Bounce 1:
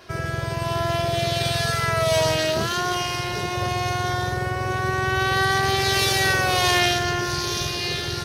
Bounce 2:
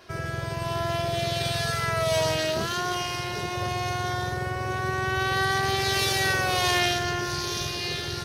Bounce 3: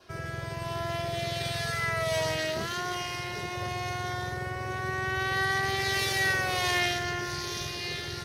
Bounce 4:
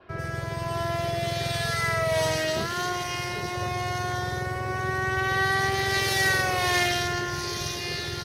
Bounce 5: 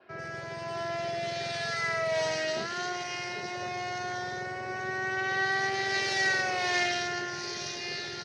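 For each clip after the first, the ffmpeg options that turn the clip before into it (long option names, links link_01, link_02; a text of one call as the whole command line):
ffmpeg -i in.wav -af "bandreject=frequency=60:width_type=h:width=6,bandreject=frequency=120:width_type=h:width=6,volume=-4dB" out.wav
ffmpeg -i in.wav -af "adynamicequalizer=threshold=0.00501:dfrequency=2000:dqfactor=5.2:tfrequency=2000:tqfactor=5.2:attack=5:release=100:ratio=0.375:range=4:mode=boostabove:tftype=bell,volume=-5dB" out.wav
ffmpeg -i in.wav -filter_complex "[0:a]acrossover=split=2800[link_01][link_02];[link_02]adelay=90[link_03];[link_01][link_03]amix=inputs=2:normalize=0,volume=4.5dB" out.wav
ffmpeg -i in.wav -af "highpass=240,equalizer=frequency=310:width_type=q:width=4:gain=-4,equalizer=frequency=490:width_type=q:width=4:gain=-4,equalizer=frequency=1100:width_type=q:width=4:gain=-7,equalizer=frequency=3400:width_type=q:width=4:gain=-5,lowpass=frequency=6300:width=0.5412,lowpass=frequency=6300:width=1.3066,volume=-2.5dB" out.wav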